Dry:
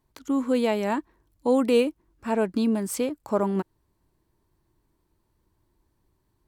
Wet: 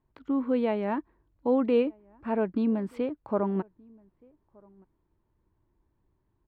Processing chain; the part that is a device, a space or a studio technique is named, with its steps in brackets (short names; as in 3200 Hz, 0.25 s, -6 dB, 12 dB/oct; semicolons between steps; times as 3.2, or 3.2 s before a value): shout across a valley (air absorption 450 m; outdoor echo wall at 210 m, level -28 dB); gain -2 dB